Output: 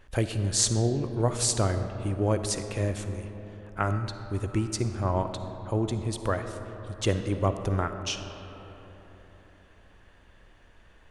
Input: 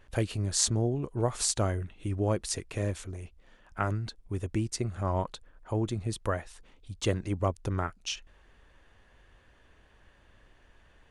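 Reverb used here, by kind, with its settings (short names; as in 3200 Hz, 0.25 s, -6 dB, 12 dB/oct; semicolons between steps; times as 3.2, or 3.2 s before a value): digital reverb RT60 4.1 s, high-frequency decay 0.4×, pre-delay 15 ms, DRR 8 dB; gain +2.5 dB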